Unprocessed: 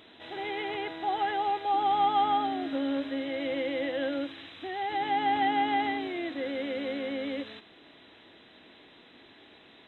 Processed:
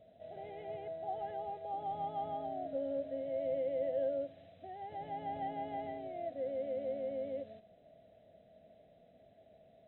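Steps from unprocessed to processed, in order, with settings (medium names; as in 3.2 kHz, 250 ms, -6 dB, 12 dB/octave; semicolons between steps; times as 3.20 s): FFT filter 190 Hz 0 dB, 330 Hz -19 dB, 660 Hz +8 dB, 930 Hz -27 dB, 2 kHz -21 dB, 4 kHz -24 dB; trim -2 dB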